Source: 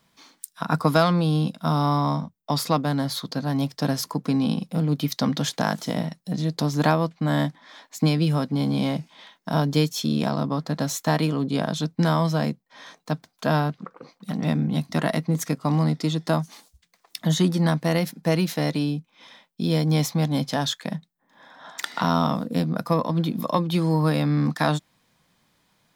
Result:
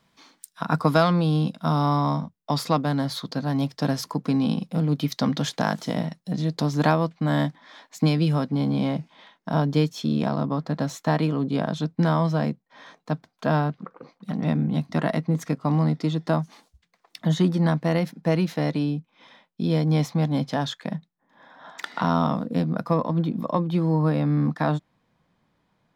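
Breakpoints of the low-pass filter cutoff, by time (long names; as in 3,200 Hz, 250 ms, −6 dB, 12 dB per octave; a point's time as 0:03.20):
low-pass filter 6 dB per octave
0:08.26 5,000 Hz
0:08.69 2,200 Hz
0:22.86 2,200 Hz
0:23.34 1,100 Hz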